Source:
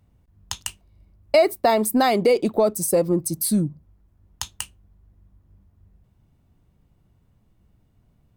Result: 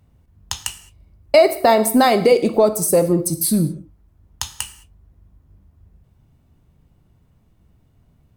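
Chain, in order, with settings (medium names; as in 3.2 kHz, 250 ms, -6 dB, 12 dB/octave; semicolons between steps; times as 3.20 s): gated-style reverb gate 240 ms falling, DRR 9 dB; trim +4 dB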